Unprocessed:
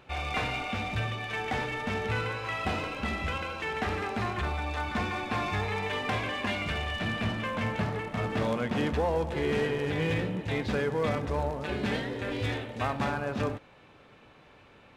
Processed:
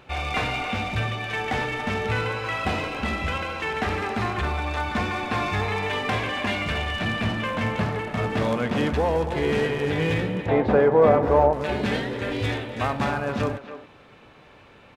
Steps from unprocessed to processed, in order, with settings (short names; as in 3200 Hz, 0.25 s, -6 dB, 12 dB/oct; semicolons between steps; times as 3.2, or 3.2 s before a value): 10.46–11.53 EQ curve 140 Hz 0 dB, 700 Hz +11 dB, 5800 Hz -16 dB; speakerphone echo 0.28 s, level -11 dB; gain +5 dB